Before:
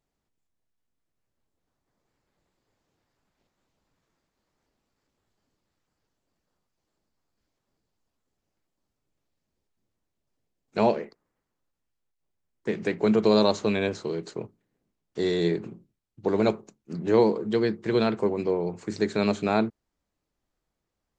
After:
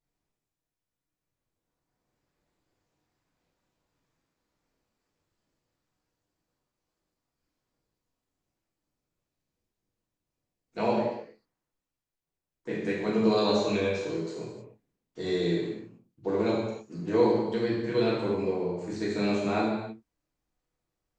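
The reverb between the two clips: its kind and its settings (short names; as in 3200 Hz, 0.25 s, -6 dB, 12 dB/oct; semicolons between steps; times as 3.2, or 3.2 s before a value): non-linear reverb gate 0.34 s falling, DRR -7 dB; gain -10 dB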